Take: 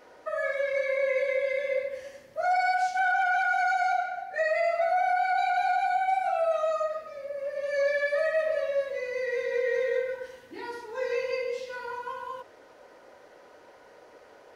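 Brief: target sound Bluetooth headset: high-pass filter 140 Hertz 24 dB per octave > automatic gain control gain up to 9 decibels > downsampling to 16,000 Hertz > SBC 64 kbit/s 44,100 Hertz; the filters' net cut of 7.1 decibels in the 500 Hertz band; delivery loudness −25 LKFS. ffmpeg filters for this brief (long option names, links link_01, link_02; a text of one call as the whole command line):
ffmpeg -i in.wav -af "highpass=frequency=140:width=0.5412,highpass=frequency=140:width=1.3066,equalizer=frequency=500:width_type=o:gain=-9,dynaudnorm=maxgain=9dB,aresample=16000,aresample=44100,volume=6dB" -ar 44100 -c:a sbc -b:a 64k out.sbc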